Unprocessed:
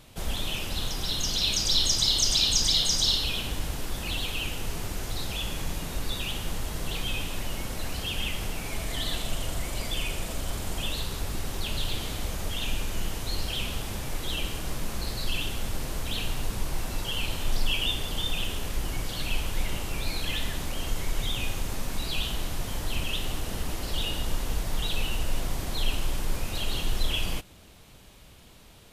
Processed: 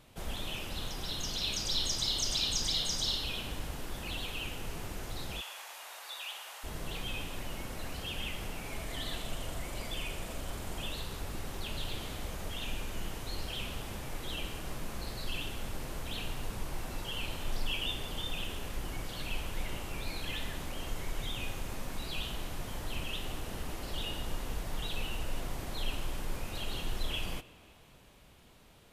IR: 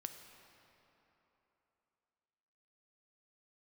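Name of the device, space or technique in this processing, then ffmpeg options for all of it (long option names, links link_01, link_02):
filtered reverb send: -filter_complex "[0:a]asplit=2[link_01][link_02];[link_02]highpass=frequency=210:poles=1,lowpass=3300[link_03];[1:a]atrim=start_sample=2205[link_04];[link_03][link_04]afir=irnorm=-1:irlink=0,volume=-1.5dB[link_05];[link_01][link_05]amix=inputs=2:normalize=0,asplit=3[link_06][link_07][link_08];[link_06]afade=type=out:start_time=5.4:duration=0.02[link_09];[link_07]highpass=frequency=700:width=0.5412,highpass=frequency=700:width=1.3066,afade=type=in:start_time=5.4:duration=0.02,afade=type=out:start_time=6.63:duration=0.02[link_10];[link_08]afade=type=in:start_time=6.63:duration=0.02[link_11];[link_09][link_10][link_11]amix=inputs=3:normalize=0,volume=-8.5dB"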